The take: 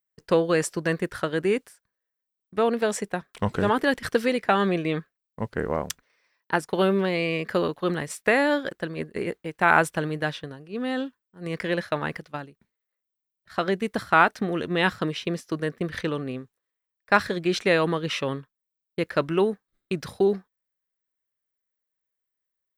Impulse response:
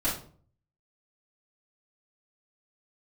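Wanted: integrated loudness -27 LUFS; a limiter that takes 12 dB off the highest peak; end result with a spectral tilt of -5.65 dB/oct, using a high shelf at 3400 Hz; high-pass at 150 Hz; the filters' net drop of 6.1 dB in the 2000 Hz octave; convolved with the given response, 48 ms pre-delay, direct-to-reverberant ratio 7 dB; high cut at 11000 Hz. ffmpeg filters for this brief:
-filter_complex "[0:a]highpass=150,lowpass=11k,equalizer=f=2k:t=o:g=-6,highshelf=f=3.4k:g=-9,alimiter=limit=-17.5dB:level=0:latency=1,asplit=2[a][b];[1:a]atrim=start_sample=2205,adelay=48[c];[b][c]afir=irnorm=-1:irlink=0,volume=-16dB[d];[a][d]amix=inputs=2:normalize=0,volume=2.5dB"

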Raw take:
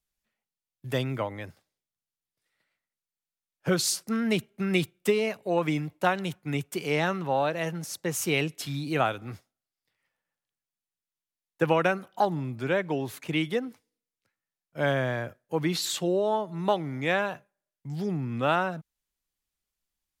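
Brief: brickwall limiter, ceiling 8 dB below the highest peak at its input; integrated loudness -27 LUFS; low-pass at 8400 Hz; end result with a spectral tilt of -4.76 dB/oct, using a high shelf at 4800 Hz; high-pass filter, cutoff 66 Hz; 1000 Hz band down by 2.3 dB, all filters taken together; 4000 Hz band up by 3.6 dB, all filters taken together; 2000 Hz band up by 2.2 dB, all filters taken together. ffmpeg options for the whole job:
-af "highpass=66,lowpass=8.4k,equalizer=f=1k:t=o:g=-4,equalizer=f=2k:t=o:g=3.5,equalizer=f=4k:t=o:g=6.5,highshelf=f=4.8k:g=-6,volume=3dB,alimiter=limit=-14dB:level=0:latency=1"

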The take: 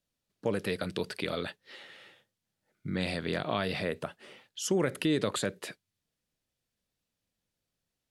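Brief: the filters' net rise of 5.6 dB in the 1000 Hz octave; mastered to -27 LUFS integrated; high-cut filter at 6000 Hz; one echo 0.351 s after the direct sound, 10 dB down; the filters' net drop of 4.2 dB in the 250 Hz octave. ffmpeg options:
-af "lowpass=6k,equalizer=f=250:t=o:g=-7,equalizer=f=1k:t=o:g=8,aecho=1:1:351:0.316,volume=6dB"

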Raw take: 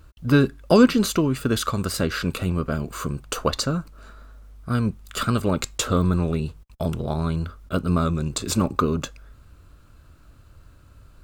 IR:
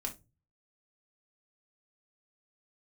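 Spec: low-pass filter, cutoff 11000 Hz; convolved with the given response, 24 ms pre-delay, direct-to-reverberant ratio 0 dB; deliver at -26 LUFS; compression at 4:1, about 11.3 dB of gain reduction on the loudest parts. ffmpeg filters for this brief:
-filter_complex "[0:a]lowpass=11k,acompressor=threshold=-23dB:ratio=4,asplit=2[a][b];[1:a]atrim=start_sample=2205,adelay=24[c];[b][c]afir=irnorm=-1:irlink=0,volume=-0.5dB[d];[a][d]amix=inputs=2:normalize=0,volume=-1.5dB"

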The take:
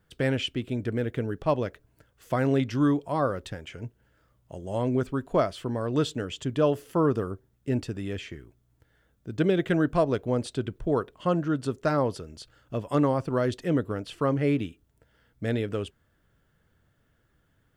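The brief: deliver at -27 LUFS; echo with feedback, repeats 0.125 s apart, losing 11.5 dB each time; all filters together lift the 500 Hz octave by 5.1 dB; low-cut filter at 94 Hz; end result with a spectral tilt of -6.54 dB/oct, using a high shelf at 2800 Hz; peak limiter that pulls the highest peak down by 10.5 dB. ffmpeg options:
-af "highpass=94,equalizer=f=500:t=o:g=6.5,highshelf=f=2.8k:g=-8.5,alimiter=limit=-18dB:level=0:latency=1,aecho=1:1:125|250|375:0.266|0.0718|0.0194,volume=2dB"

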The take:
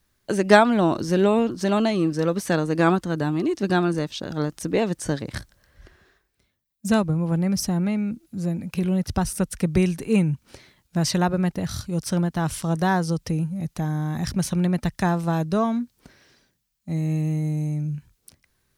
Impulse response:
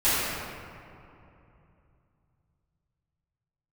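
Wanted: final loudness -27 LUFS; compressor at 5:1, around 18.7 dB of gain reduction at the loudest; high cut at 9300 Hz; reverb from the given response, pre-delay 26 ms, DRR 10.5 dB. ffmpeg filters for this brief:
-filter_complex "[0:a]lowpass=9.3k,acompressor=threshold=-30dB:ratio=5,asplit=2[a][b];[1:a]atrim=start_sample=2205,adelay=26[c];[b][c]afir=irnorm=-1:irlink=0,volume=-27.5dB[d];[a][d]amix=inputs=2:normalize=0,volume=6dB"

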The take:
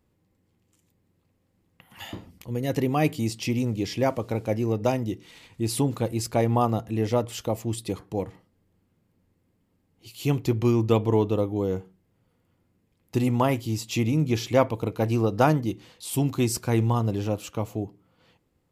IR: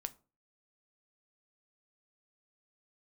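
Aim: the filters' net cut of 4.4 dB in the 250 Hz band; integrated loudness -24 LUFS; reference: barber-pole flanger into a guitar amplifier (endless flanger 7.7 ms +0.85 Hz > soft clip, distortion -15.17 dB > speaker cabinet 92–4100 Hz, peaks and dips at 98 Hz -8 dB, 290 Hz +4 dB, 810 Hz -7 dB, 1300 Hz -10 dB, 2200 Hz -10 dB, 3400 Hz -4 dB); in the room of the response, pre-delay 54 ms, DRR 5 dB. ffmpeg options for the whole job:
-filter_complex "[0:a]equalizer=f=250:t=o:g=-7.5,asplit=2[a][b];[1:a]atrim=start_sample=2205,adelay=54[c];[b][c]afir=irnorm=-1:irlink=0,volume=-2.5dB[d];[a][d]amix=inputs=2:normalize=0,asplit=2[e][f];[f]adelay=7.7,afreqshift=0.85[g];[e][g]amix=inputs=2:normalize=1,asoftclip=threshold=-19.5dB,highpass=92,equalizer=f=98:t=q:w=4:g=-8,equalizer=f=290:t=q:w=4:g=4,equalizer=f=810:t=q:w=4:g=-7,equalizer=f=1.3k:t=q:w=4:g=-10,equalizer=f=2.2k:t=q:w=4:g=-10,equalizer=f=3.4k:t=q:w=4:g=-4,lowpass=f=4.1k:w=0.5412,lowpass=f=4.1k:w=1.3066,volume=9.5dB"

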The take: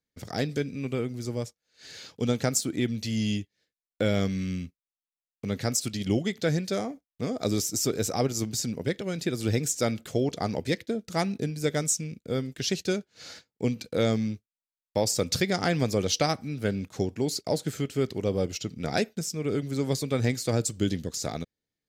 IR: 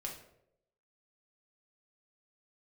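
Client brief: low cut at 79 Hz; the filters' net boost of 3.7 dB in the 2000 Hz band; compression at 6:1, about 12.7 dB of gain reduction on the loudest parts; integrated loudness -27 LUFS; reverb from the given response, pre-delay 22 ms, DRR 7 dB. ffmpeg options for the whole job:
-filter_complex "[0:a]highpass=79,equalizer=f=2k:t=o:g=4.5,acompressor=threshold=-34dB:ratio=6,asplit=2[a][b];[1:a]atrim=start_sample=2205,adelay=22[c];[b][c]afir=irnorm=-1:irlink=0,volume=-6dB[d];[a][d]amix=inputs=2:normalize=0,volume=11dB"

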